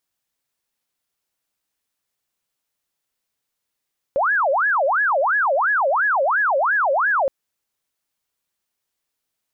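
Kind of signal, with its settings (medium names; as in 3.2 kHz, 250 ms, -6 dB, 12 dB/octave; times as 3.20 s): siren wail 534–1700 Hz 2.9 per s sine -15.5 dBFS 3.12 s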